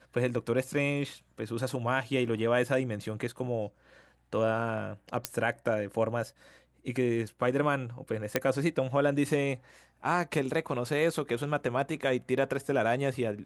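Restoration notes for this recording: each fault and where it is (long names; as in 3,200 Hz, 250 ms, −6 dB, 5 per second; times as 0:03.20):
0:05.25: click −10 dBFS
0:08.36: click −10 dBFS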